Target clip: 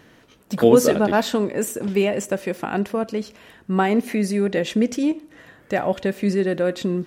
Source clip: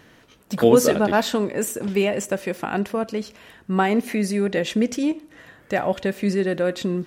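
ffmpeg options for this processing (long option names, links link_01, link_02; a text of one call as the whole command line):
ffmpeg -i in.wav -af "equalizer=frequency=300:width_type=o:width=2.5:gain=2.5,volume=-1dB" out.wav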